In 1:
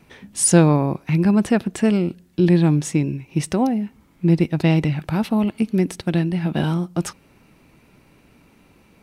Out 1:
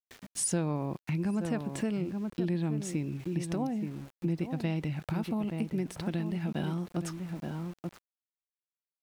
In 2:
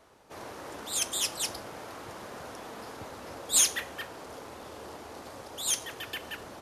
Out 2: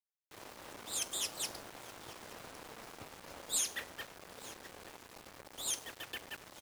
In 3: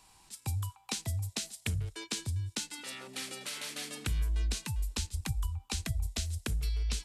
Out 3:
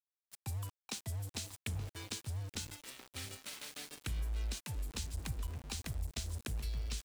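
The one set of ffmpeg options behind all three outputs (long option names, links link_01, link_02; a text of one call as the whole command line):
ffmpeg -i in.wav -filter_complex "[0:a]asplit=2[link_01][link_02];[link_02]adelay=874.6,volume=-9dB,highshelf=frequency=4000:gain=-19.7[link_03];[link_01][link_03]amix=inputs=2:normalize=0,aeval=exprs='val(0)*gte(abs(val(0)),0.0106)':channel_layout=same,acompressor=threshold=-26dB:ratio=2.5,volume=-6dB" out.wav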